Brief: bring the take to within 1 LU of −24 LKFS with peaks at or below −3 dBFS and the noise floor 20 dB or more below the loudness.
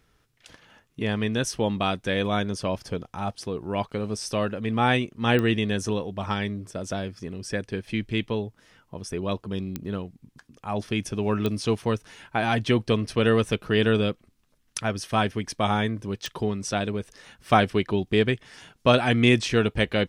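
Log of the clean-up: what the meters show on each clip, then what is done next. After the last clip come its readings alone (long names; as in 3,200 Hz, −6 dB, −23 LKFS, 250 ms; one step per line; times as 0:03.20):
number of clicks 4; integrated loudness −26.0 LKFS; sample peak −4.0 dBFS; target loudness −24.0 LKFS
→ click removal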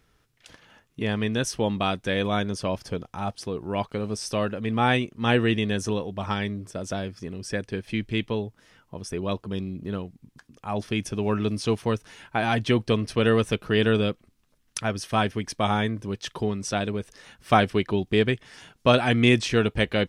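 number of clicks 0; integrated loudness −26.0 LKFS; sample peak −4.0 dBFS; target loudness −24.0 LKFS
→ level +2 dB
brickwall limiter −3 dBFS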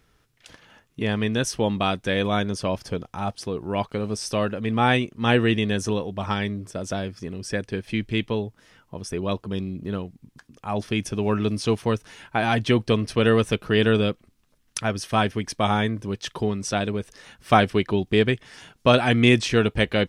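integrated loudness −24.0 LKFS; sample peak −3.0 dBFS; background noise floor −65 dBFS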